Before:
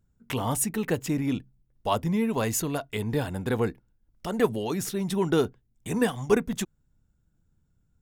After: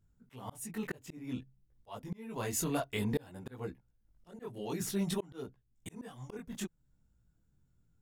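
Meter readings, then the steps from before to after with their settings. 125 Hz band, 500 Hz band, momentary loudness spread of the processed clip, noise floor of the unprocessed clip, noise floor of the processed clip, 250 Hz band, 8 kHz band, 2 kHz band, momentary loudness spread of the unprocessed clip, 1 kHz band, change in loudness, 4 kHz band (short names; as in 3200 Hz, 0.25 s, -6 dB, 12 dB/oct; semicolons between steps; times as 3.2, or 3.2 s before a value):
-11.0 dB, -14.0 dB, 15 LU, -70 dBFS, -74 dBFS, -11.0 dB, -9.0 dB, -11.5 dB, 9 LU, -13.5 dB, -11.5 dB, -9.5 dB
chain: chorus voices 2, 0.55 Hz, delay 20 ms, depth 4.7 ms; auto swell 0.628 s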